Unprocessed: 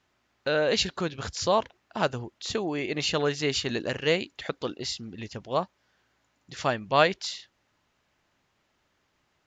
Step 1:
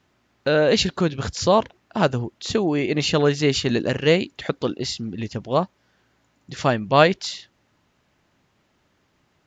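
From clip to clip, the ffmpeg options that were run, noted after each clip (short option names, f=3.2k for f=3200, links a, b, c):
-af "equalizer=f=170:t=o:w=2.9:g=7,volume=4dB"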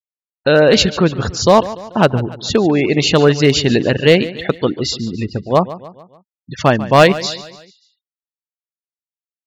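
-af "afftfilt=real='re*gte(hypot(re,im),0.0282)':imag='im*gte(hypot(re,im),0.0282)':win_size=1024:overlap=0.75,asoftclip=type=hard:threshold=-9.5dB,aecho=1:1:145|290|435|580:0.158|0.0761|0.0365|0.0175,volume=7.5dB"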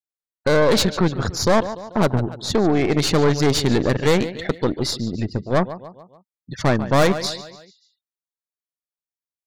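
-af "aeval=exprs='(tanh(3.98*val(0)+0.65)-tanh(0.65))/3.98':c=same,equalizer=f=2.8k:t=o:w=0.29:g=-10"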